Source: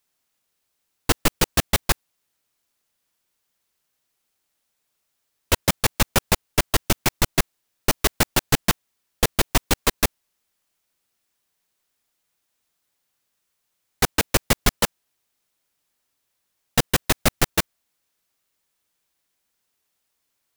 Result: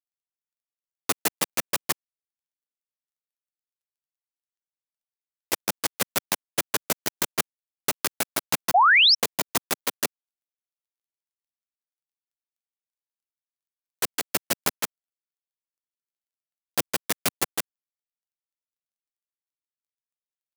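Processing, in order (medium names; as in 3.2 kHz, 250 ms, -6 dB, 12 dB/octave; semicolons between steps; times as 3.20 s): dead-time distortion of 0.22 ms; high-pass 210 Hz; treble shelf 4.8 kHz +9 dB; painted sound rise, 8.74–9.15 s, 660–5700 Hz -11 dBFS; trim -5 dB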